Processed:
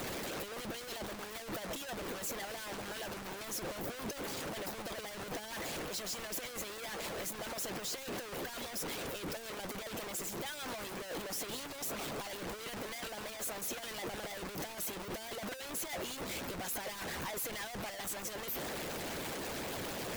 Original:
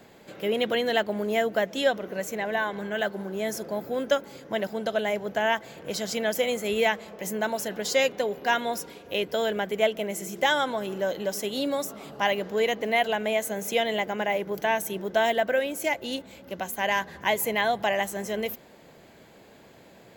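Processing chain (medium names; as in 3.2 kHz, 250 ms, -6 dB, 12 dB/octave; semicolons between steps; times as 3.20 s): one-bit comparator; harmonic-percussive split harmonic -13 dB; trim -8 dB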